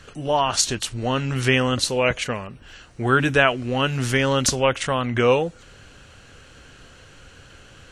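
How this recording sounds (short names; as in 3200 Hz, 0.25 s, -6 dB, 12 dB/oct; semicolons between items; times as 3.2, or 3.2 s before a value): noise floor -48 dBFS; spectral tilt -4.0 dB/oct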